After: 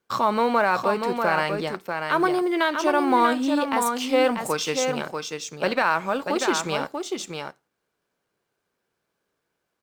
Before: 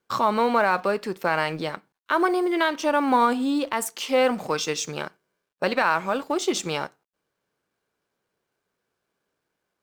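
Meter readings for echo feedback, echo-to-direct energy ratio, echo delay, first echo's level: no regular repeats, -5.5 dB, 640 ms, -5.5 dB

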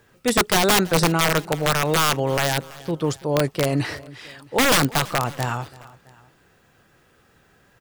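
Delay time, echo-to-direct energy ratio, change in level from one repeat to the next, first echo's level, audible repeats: 332 ms, -20.0 dB, -5.0 dB, -21.0 dB, 2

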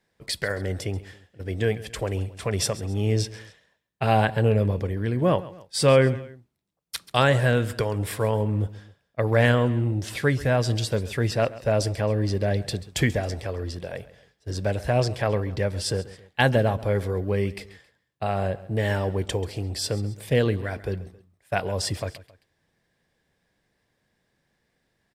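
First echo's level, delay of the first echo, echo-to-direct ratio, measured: -18.0 dB, 135 ms, -17.0 dB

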